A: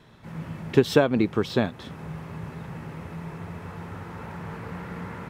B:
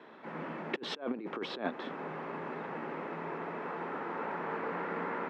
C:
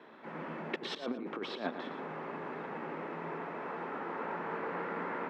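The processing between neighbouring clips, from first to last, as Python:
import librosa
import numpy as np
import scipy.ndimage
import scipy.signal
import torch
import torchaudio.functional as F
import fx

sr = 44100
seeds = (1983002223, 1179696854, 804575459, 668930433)

y1 = scipy.signal.sosfilt(scipy.signal.butter(2, 2100.0, 'lowpass', fs=sr, output='sos'), x)
y1 = fx.over_compress(y1, sr, threshold_db=-28.0, ratio=-0.5)
y1 = scipy.signal.sosfilt(scipy.signal.butter(4, 270.0, 'highpass', fs=sr, output='sos'), y1)
y2 = fx.echo_feedback(y1, sr, ms=114, feedback_pct=17, wet_db=-9.5)
y2 = y2 * librosa.db_to_amplitude(-1.5)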